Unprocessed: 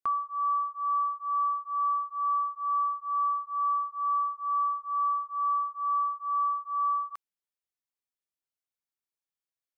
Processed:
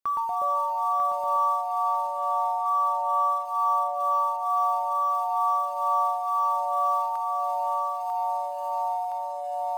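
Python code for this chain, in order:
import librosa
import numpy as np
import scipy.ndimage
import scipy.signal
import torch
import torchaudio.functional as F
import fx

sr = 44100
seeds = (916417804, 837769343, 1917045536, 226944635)

p1 = fx.quant_float(x, sr, bits=2)
p2 = x + (p1 * librosa.db_to_amplitude(-5.0))
p3 = fx.air_absorb(p2, sr, metres=230.0, at=(1.65, 2.66))
p4 = fx.echo_pitch(p3, sr, ms=102, semitones=-4, count=3, db_per_echo=-3.0)
p5 = fx.echo_feedback(p4, sr, ms=945, feedback_pct=32, wet_db=-4.5)
y = p5 * librosa.db_to_amplitude(-3.0)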